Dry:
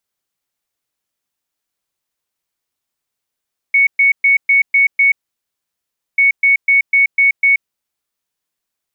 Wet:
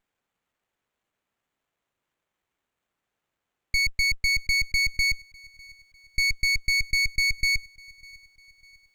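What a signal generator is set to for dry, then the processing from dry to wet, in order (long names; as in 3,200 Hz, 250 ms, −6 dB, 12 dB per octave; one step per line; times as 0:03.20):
beeps in groups sine 2,220 Hz, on 0.13 s, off 0.12 s, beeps 6, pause 1.06 s, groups 2, −7.5 dBFS
brickwall limiter −14.5 dBFS
delay with a high-pass on its return 600 ms, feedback 46%, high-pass 1,900 Hz, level −23.5 dB
windowed peak hold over 9 samples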